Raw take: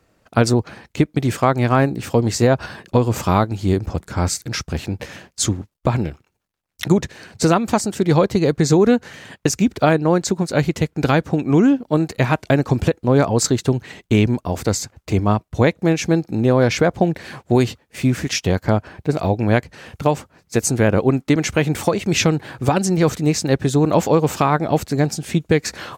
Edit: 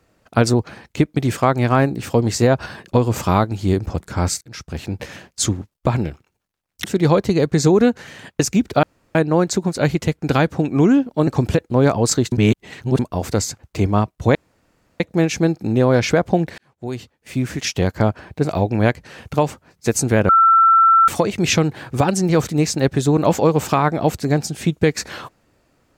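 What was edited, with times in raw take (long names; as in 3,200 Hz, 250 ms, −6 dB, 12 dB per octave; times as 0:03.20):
0:04.41–0:04.98: fade in, from −22 dB
0:06.84–0:07.90: remove
0:09.89: splice in room tone 0.32 s
0:12.01–0:12.60: remove
0:13.65–0:14.32: reverse
0:15.68: splice in room tone 0.65 s
0:17.26–0:18.55: fade in
0:20.97–0:21.76: beep over 1,340 Hz −8.5 dBFS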